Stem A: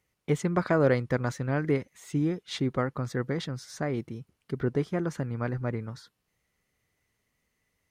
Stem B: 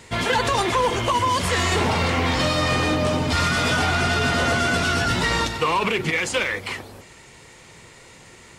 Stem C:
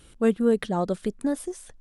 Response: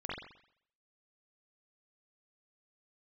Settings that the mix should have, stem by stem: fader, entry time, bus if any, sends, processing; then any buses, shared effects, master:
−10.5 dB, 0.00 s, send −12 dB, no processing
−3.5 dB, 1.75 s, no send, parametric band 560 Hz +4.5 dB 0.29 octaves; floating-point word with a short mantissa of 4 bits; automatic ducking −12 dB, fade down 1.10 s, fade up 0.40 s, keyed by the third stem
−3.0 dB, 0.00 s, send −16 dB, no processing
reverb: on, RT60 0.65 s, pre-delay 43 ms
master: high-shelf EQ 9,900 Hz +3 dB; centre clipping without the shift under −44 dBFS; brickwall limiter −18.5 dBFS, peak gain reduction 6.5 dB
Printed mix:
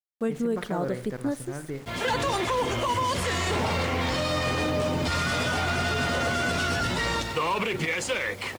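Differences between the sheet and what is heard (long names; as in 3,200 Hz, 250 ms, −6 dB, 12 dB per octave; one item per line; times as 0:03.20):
stem C: send −16 dB → −23.5 dB
master: missing high-shelf EQ 9,900 Hz +3 dB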